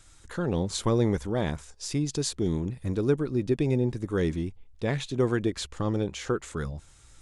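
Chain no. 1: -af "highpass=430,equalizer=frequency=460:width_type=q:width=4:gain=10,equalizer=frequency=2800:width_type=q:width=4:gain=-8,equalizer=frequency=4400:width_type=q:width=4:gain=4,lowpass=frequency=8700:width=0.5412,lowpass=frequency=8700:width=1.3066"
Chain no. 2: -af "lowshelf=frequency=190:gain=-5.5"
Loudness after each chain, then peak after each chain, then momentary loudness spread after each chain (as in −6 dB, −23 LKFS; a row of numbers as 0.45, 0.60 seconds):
−29.5, −30.5 LKFS; −11.5, −14.5 dBFS; 12, 10 LU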